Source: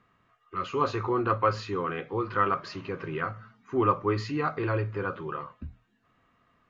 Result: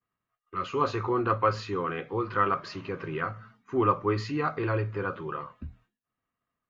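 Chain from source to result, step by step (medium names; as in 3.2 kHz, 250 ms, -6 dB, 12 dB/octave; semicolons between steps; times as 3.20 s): expander -54 dBFS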